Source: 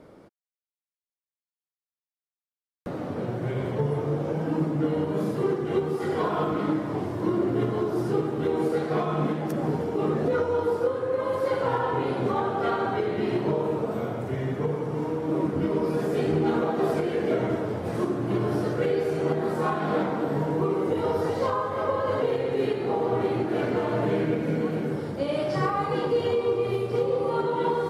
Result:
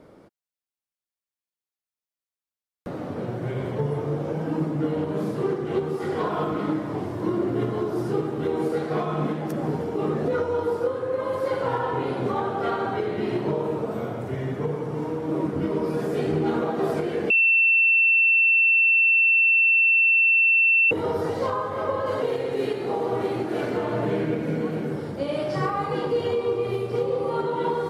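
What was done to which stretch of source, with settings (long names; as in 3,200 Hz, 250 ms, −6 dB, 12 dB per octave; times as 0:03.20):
0:04.93–0:06.31: highs frequency-modulated by the lows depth 0.12 ms
0:17.30–0:20.91: beep over 2,690 Hz −15 dBFS
0:22.06–0:23.77: bass and treble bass −3 dB, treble +5 dB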